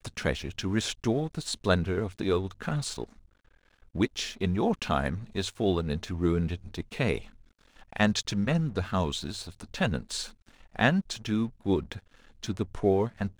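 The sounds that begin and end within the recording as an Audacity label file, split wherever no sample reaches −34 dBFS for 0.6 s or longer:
3.950000	7.190000	sound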